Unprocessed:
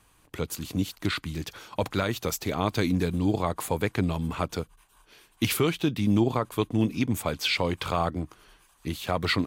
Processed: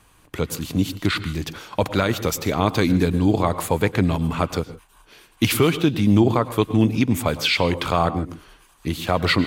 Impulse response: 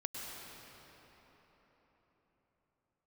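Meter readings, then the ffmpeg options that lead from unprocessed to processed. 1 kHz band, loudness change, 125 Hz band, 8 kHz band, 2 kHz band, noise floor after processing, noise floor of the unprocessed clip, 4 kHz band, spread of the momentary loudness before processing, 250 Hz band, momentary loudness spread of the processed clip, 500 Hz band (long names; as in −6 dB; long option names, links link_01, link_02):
+7.0 dB, +7.0 dB, +7.0 dB, +5.0 dB, +6.5 dB, −55 dBFS, −62 dBFS, +6.0 dB, 11 LU, +7.0 dB, 11 LU, +7.0 dB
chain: -filter_complex "[0:a]asplit=2[link_01][link_02];[1:a]atrim=start_sample=2205,afade=type=out:start_time=0.21:duration=0.01,atrim=end_sample=9702,highshelf=frequency=5500:gain=-9[link_03];[link_02][link_03]afir=irnorm=-1:irlink=0,volume=-2dB[link_04];[link_01][link_04]amix=inputs=2:normalize=0,volume=3dB"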